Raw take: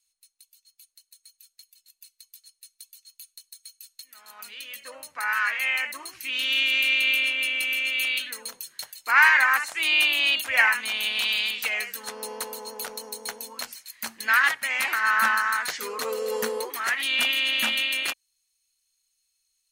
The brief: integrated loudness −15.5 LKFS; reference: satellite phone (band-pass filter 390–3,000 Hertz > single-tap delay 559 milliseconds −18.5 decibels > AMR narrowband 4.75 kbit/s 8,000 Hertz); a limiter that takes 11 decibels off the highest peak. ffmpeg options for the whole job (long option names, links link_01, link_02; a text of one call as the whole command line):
ffmpeg -i in.wav -af "alimiter=limit=-16.5dB:level=0:latency=1,highpass=390,lowpass=3000,aecho=1:1:559:0.119,volume=13.5dB" -ar 8000 -c:a libopencore_amrnb -b:a 4750 out.amr